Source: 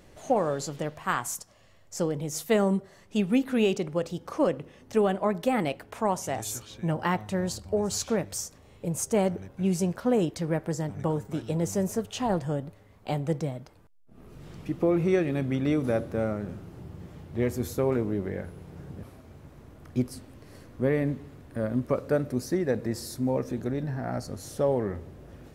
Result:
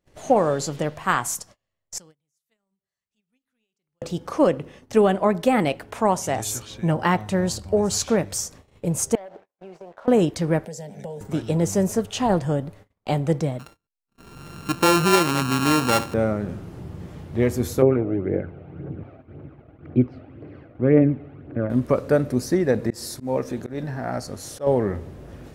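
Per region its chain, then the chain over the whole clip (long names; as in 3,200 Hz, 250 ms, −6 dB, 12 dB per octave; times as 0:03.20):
0:01.98–0:04.02: guitar amp tone stack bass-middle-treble 5-5-5 + downward compressor, threshold −54 dBFS
0:09.15–0:10.08: four-pole ladder band-pass 840 Hz, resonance 30% + leveller curve on the samples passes 2 + downward compressor 16 to 1, threshold −42 dBFS
0:10.65–0:11.21: high-pass filter 210 Hz + downward compressor 2.5 to 1, threshold −38 dBFS + phaser with its sweep stopped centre 320 Hz, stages 6
0:13.59–0:16.14: samples sorted by size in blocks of 32 samples + low-shelf EQ 94 Hz −7.5 dB
0:17.82–0:21.70: phase shifter 1.9 Hz, delay 1.7 ms + loudspeaker in its box 120–2,300 Hz, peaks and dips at 200 Hz −7 dB, 320 Hz +5 dB, 1,000 Hz −10 dB, 1,800 Hz −8 dB
0:22.90–0:24.67: low-shelf EQ 310 Hz −6.5 dB + volume swells 132 ms
whole clip: noise gate −51 dBFS, range −31 dB; parametric band 14,000 Hz −4.5 dB 0.3 octaves; level +6.5 dB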